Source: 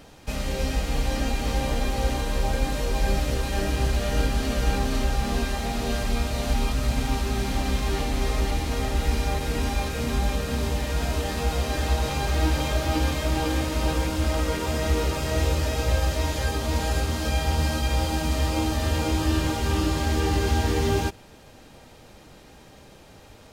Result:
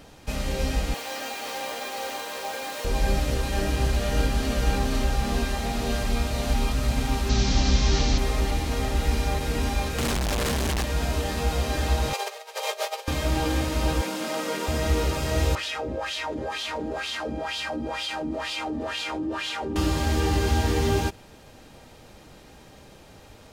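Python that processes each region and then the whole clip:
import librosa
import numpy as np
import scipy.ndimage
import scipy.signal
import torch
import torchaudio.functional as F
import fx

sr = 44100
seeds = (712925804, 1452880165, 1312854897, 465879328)

y = fx.chain(x, sr, fx.highpass(hz=580.0, slope=12),
    fx.resample_bad(factor=2, down='none', up='hold'), at=(0.94, 2.85))
y = fx.chain(y, sr, fx.delta_mod(bps=32000, step_db=-33.0),
    fx.bass_treble(bass_db=5, treble_db=13), at=(7.29, 8.18))
y = fx.chain(y, sr, fx.clip_1bit(),
    fx.resample_linear(factor=2), at=(9.98, 10.84))
y = fx.chain(y, sr, fx.peak_eq(hz=1500.0, db=-7.0, octaves=0.22),
    fx.over_compress(threshold_db=-27.0, ratio=-0.5),
    fx.brickwall_highpass(low_hz=390.0), at=(12.13, 13.08))
y = fx.chain(y, sr, fx.steep_highpass(hz=180.0, slope=36),
    fx.peak_eq(hz=280.0, db=-3.5, octaves=0.68), at=(14.01, 14.68))
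y = fx.chain(y, sr, fx.peak_eq(hz=9700.0, db=5.5, octaves=1.4),
    fx.wah_lfo(hz=2.1, low_hz=270.0, high_hz=3500.0, q=3.0),
    fx.env_flatten(amount_pct=70), at=(15.55, 19.76))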